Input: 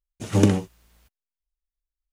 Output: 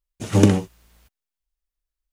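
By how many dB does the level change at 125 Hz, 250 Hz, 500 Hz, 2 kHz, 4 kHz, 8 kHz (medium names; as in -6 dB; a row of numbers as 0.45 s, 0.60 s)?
+3.0 dB, +3.0 dB, +3.0 dB, +3.0 dB, +3.0 dB, +3.0 dB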